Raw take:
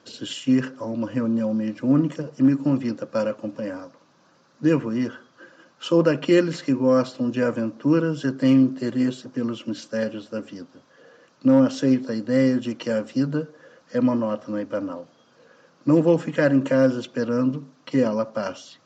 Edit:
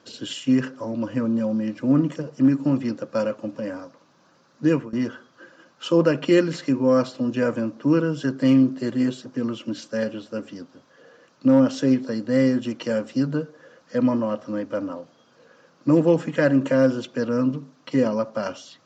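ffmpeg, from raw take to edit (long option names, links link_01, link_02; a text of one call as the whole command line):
ffmpeg -i in.wav -filter_complex "[0:a]asplit=2[link_01][link_02];[link_01]atrim=end=4.93,asetpts=PTS-STARTPTS,afade=type=out:start_time=4.65:duration=0.28:curve=qsin:silence=0.105925[link_03];[link_02]atrim=start=4.93,asetpts=PTS-STARTPTS,afade=type=in:duration=0.004:curve=hsin:silence=0.105925[link_04];[link_03][link_04]concat=n=2:v=0:a=1" out.wav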